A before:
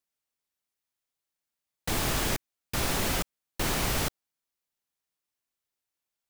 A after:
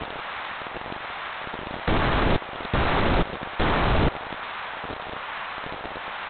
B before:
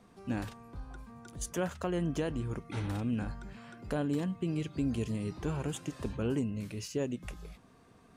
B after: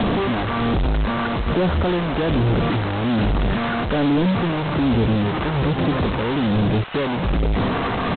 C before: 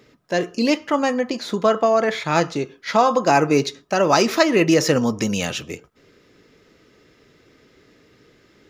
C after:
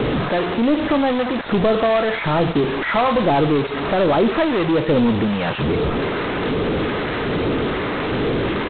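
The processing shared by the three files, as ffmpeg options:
-filter_complex "[0:a]aeval=exprs='val(0)+0.5*0.126*sgn(val(0))':c=same,lowpass=1.4k,asplit=2[a][b];[b]acompressor=threshold=-23dB:ratio=16,volume=2.5dB[c];[a][c]amix=inputs=2:normalize=0,asoftclip=type=tanh:threshold=-9dB,acrossover=split=740[d][e];[d]aeval=exprs='val(0)*(1-0.5/2+0.5/2*cos(2*PI*1.2*n/s))':c=same[f];[e]aeval=exprs='val(0)*(1-0.5/2-0.5/2*cos(2*PI*1.2*n/s))':c=same[g];[f][g]amix=inputs=2:normalize=0,acrossover=split=580[h][i];[h]acrusher=bits=4:mix=0:aa=0.000001[j];[i]aecho=1:1:84:0.0891[k];[j][k]amix=inputs=2:normalize=0" -ar 8000 -c:a adpcm_g726 -b:a 16k

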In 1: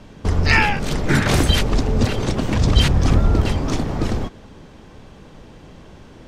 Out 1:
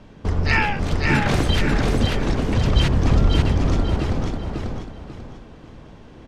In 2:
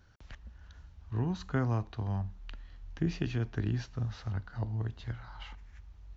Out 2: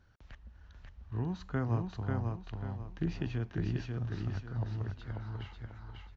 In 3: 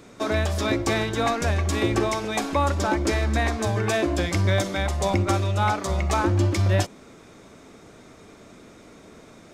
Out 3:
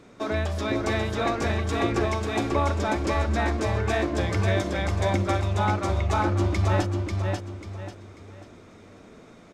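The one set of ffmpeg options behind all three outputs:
-filter_complex "[0:a]lowpass=f=3.9k:p=1,asplit=2[a][b];[b]aecho=0:1:541|1082|1623|2164:0.668|0.221|0.0728|0.024[c];[a][c]amix=inputs=2:normalize=0,volume=-3dB"

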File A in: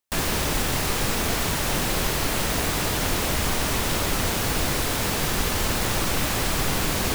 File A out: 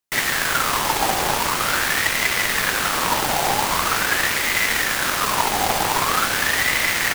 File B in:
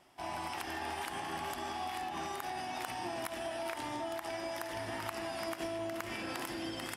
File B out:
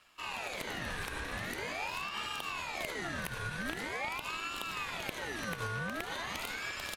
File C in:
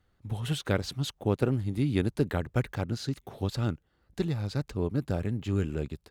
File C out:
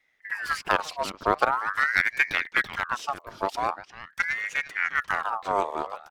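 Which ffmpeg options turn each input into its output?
-filter_complex "[0:a]asplit=2[a][b];[b]adelay=350,highpass=300,lowpass=3.4k,asoftclip=type=hard:threshold=-19.5dB,volume=-7dB[c];[a][c]amix=inputs=2:normalize=0,aeval=exprs='0.316*(cos(1*acos(clip(val(0)/0.316,-1,1)))-cos(1*PI/2))+0.0178*(cos(7*acos(clip(val(0)/0.316,-1,1)))-cos(7*PI/2))':c=same,aeval=exprs='val(0)*sin(2*PI*1400*n/s+1400*0.45/0.44*sin(2*PI*0.44*n/s))':c=same,volume=7dB"

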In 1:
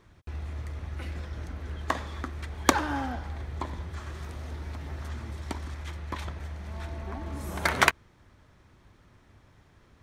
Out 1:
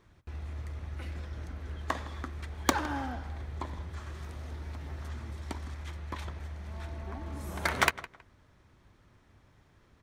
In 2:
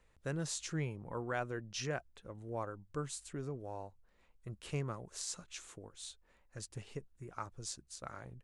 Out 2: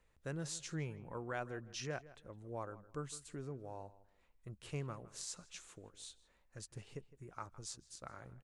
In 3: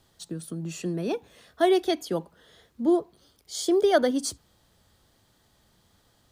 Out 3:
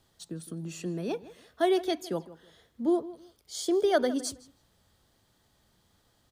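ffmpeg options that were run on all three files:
-filter_complex "[0:a]asplit=2[a][b];[b]aeval=exprs='(mod(2*val(0)+1,2)-1)/2':c=same,volume=-11.5dB[c];[a][c]amix=inputs=2:normalize=0,asplit=2[d][e];[e]adelay=160,lowpass=f=3.5k:p=1,volume=-17dB,asplit=2[f][g];[g]adelay=160,lowpass=f=3.5k:p=1,volume=0.24[h];[d][f][h]amix=inputs=3:normalize=0,volume=-6dB"

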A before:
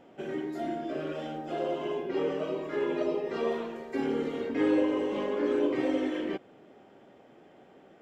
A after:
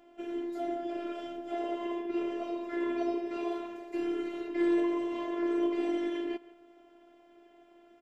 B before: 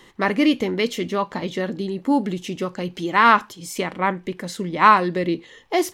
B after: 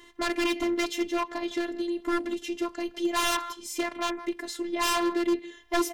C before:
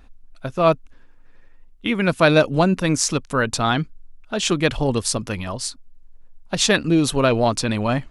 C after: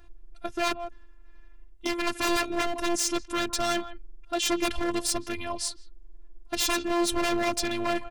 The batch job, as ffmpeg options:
-filter_complex "[0:a]asplit=2[a][b];[b]adelay=160,highpass=300,lowpass=3.4k,asoftclip=type=hard:threshold=-9.5dB,volume=-18dB[c];[a][c]amix=inputs=2:normalize=0,aeval=exprs='0.141*(abs(mod(val(0)/0.141+3,4)-2)-1)':c=same,afftfilt=real='hypot(re,im)*cos(PI*b)':imag='0':win_size=512:overlap=0.75"

